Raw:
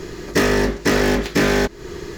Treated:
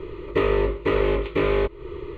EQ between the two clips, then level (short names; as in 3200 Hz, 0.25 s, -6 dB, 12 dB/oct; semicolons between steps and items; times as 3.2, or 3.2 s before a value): air absorption 360 m; fixed phaser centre 1100 Hz, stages 8; 0.0 dB